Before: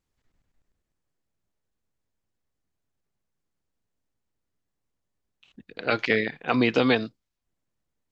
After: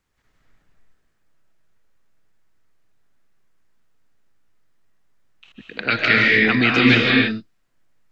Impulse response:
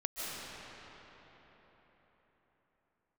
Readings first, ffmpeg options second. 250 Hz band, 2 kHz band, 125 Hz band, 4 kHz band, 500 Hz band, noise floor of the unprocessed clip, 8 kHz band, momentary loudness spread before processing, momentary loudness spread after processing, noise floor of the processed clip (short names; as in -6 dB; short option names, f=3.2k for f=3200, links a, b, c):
+7.5 dB, +12.5 dB, +10.0 dB, +11.5 dB, +1.5 dB, -81 dBFS, n/a, 14 LU, 14 LU, -66 dBFS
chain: -filter_complex "[0:a]equalizer=f=1.6k:t=o:w=1.6:g=7.5,acrossover=split=310|1700[a][b][c];[b]acompressor=threshold=-38dB:ratio=6[d];[a][d][c]amix=inputs=3:normalize=0[e];[1:a]atrim=start_sample=2205,afade=t=out:st=0.39:d=0.01,atrim=end_sample=17640[f];[e][f]afir=irnorm=-1:irlink=0,volume=7.5dB"